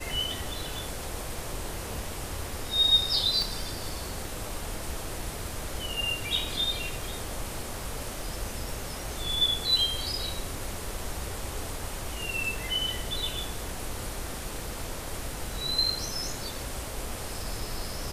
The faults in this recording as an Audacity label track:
3.420000	3.420000	pop

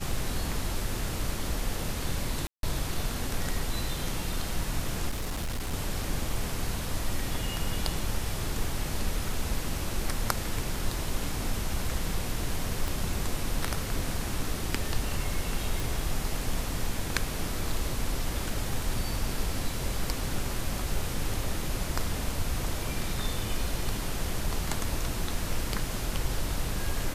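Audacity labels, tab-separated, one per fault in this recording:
2.470000	2.630000	gap 0.162 s
5.090000	5.740000	clipped -28 dBFS
12.880000	12.880000	pop
15.800000	15.800000	pop

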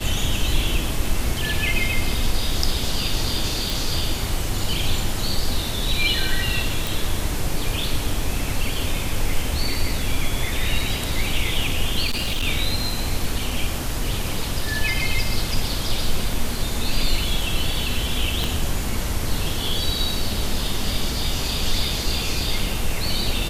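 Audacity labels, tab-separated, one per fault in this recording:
3.700000	3.700000	pop
6.870000	6.870000	pop
12.050000	12.470000	clipped -19 dBFS
18.440000	18.440000	pop

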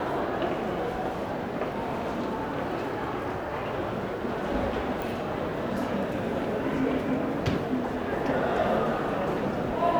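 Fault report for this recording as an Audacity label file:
5.020000	5.020000	pop

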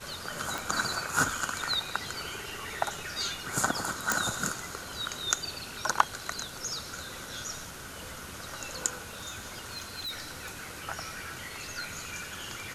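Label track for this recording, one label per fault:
0.580000	0.580000	pop
4.120000	4.120000	pop
9.010000	10.690000	clipped -33 dBFS

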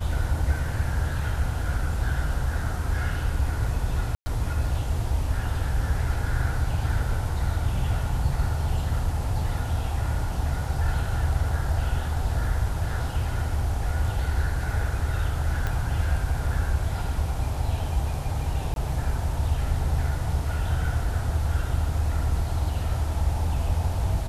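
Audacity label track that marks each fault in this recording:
4.150000	4.260000	gap 0.11 s
15.670000	15.670000	pop -15 dBFS
18.740000	18.760000	gap 22 ms

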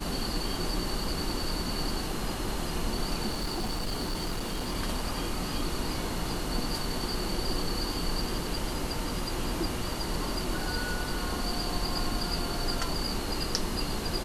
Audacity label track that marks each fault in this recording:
3.300000	4.760000	clipped -27.5 dBFS

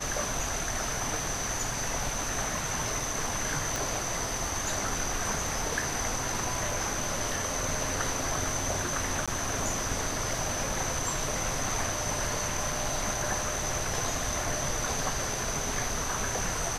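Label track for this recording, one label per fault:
3.760000	3.760000	pop
9.260000	9.280000	gap 16 ms

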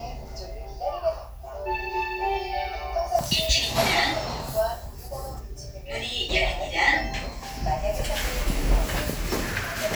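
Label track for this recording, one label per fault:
3.190000	3.190000	gap 4 ms

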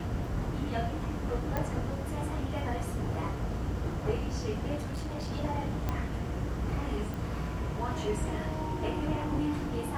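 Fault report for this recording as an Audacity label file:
1.570000	1.570000	pop -18 dBFS
4.760000	5.310000	clipped -32 dBFS
5.890000	5.890000	pop -18 dBFS
7.140000	7.140000	pop

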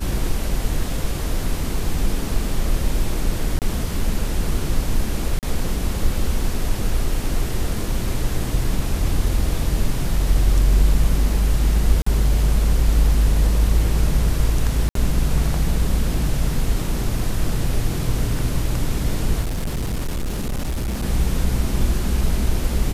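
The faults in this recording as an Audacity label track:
3.590000	3.620000	gap 28 ms
5.390000	5.430000	gap 38 ms
12.020000	12.060000	gap 44 ms
14.890000	14.950000	gap 63 ms
19.410000	21.040000	clipped -20 dBFS

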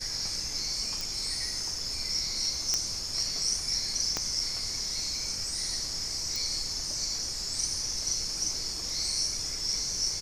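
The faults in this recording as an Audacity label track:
1.010000	1.010000	pop
2.740000	2.740000	pop -13 dBFS
4.170000	4.170000	pop -14 dBFS
6.360000	6.360000	pop

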